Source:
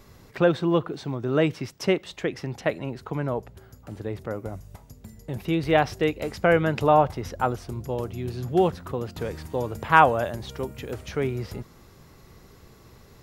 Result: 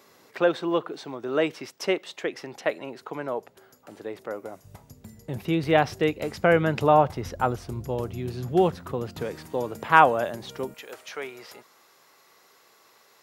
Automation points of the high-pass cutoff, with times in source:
350 Hz
from 4.64 s 89 Hz
from 7.15 s 40 Hz
from 8.20 s 92 Hz
from 9.23 s 180 Hz
from 10.74 s 690 Hz

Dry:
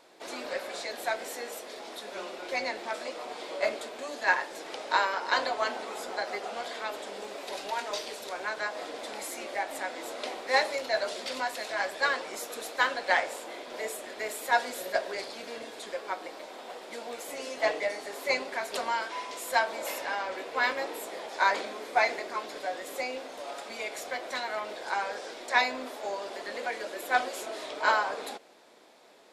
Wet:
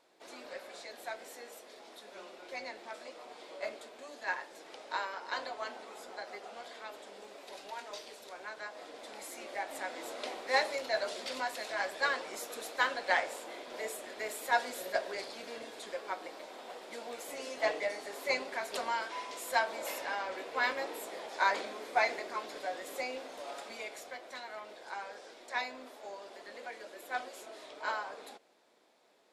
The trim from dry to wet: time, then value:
8.76 s -10.5 dB
9.94 s -4 dB
23.62 s -4 dB
24.21 s -11 dB

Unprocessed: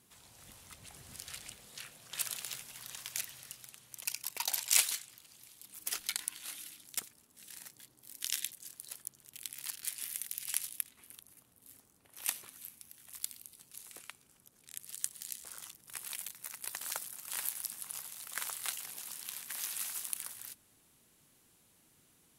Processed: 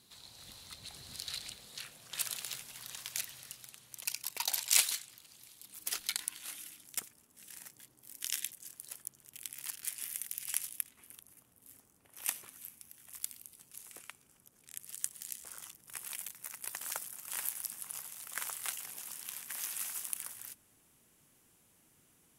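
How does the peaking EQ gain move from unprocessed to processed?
peaking EQ 4.1 kHz 0.45 oct
1.36 s +14 dB
1.99 s +2.5 dB
6.12 s +2.5 dB
6.68 s -5.5 dB

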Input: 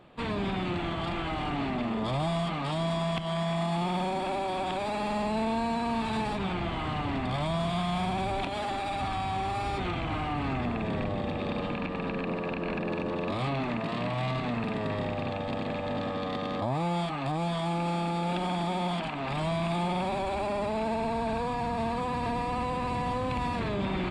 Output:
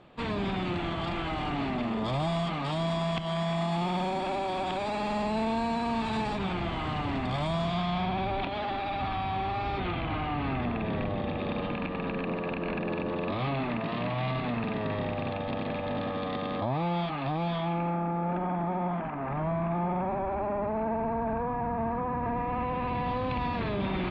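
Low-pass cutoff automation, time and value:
low-pass 24 dB/octave
7.52 s 7.9 kHz
8.10 s 4 kHz
17.52 s 4 kHz
18.00 s 1.8 kHz
22.20 s 1.8 kHz
23.21 s 4.2 kHz

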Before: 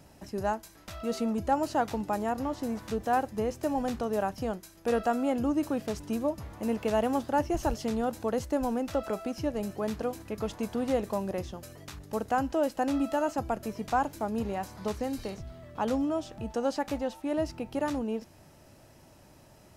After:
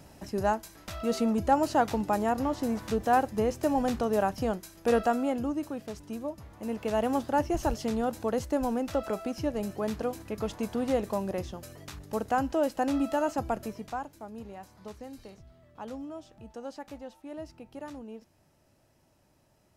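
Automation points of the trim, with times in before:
4.96 s +3 dB
5.73 s -6 dB
6.50 s -6 dB
7.12 s +0.5 dB
13.60 s +0.5 dB
14.08 s -11 dB

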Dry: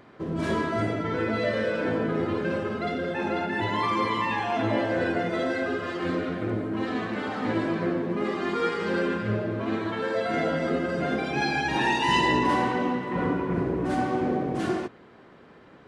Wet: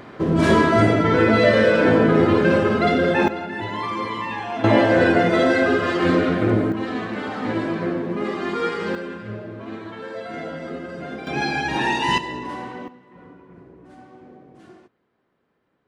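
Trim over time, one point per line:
+11 dB
from 3.28 s -1 dB
from 4.64 s +10 dB
from 6.72 s +2.5 dB
from 8.95 s -5.5 dB
from 11.27 s +2.5 dB
from 12.18 s -8 dB
from 12.88 s -19.5 dB

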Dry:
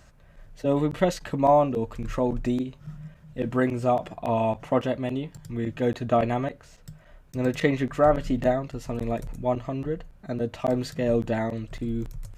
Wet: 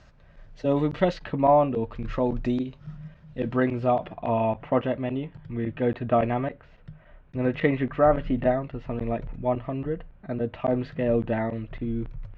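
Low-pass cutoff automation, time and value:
low-pass 24 dB/octave
0.89 s 5.4 kHz
1.48 s 3.1 kHz
2.32 s 5 kHz
3.38 s 5 kHz
4.37 s 3 kHz

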